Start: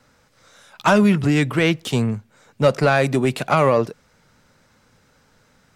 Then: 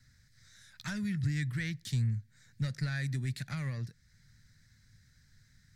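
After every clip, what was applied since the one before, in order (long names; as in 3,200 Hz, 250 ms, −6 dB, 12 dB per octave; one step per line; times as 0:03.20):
downward compressor 1.5 to 1, threshold −35 dBFS, peak gain reduction 9 dB
drawn EQ curve 120 Hz 0 dB, 440 Hz −29 dB, 780 Hz −30 dB, 1,200 Hz −26 dB, 1,800 Hz −4 dB, 2,800 Hz −20 dB, 4,100 Hz −5 dB, 8,800 Hz −9 dB
level +1 dB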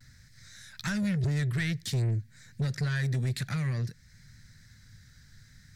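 soft clipping −33 dBFS, distortion −11 dB
pitch vibrato 0.54 Hz 28 cents
level +8.5 dB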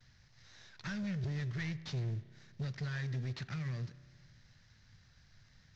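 variable-slope delta modulation 32 kbit/s
spring reverb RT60 1.8 s, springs 31 ms, chirp 65 ms, DRR 15.5 dB
level −8.5 dB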